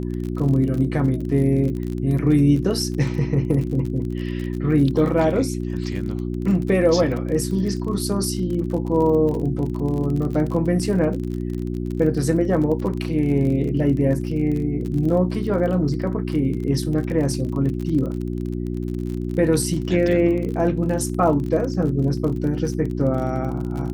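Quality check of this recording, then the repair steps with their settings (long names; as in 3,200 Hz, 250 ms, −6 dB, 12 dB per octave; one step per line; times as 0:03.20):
surface crackle 36 per second −28 dBFS
mains hum 60 Hz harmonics 6 −26 dBFS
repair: click removal
hum removal 60 Hz, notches 6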